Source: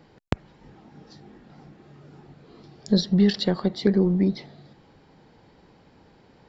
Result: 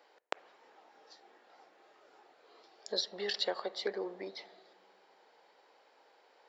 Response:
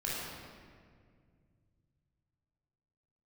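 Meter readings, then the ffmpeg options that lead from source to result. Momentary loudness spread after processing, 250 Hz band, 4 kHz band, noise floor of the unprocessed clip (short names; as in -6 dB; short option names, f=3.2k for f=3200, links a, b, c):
14 LU, -27.5 dB, -5.0 dB, -56 dBFS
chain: -filter_complex "[0:a]highpass=f=490:w=0.5412,highpass=f=490:w=1.3066,asplit=2[a][b];[1:a]atrim=start_sample=2205,lowpass=2.6k[c];[b][c]afir=irnorm=-1:irlink=0,volume=-23.5dB[d];[a][d]amix=inputs=2:normalize=0,volume=-5dB"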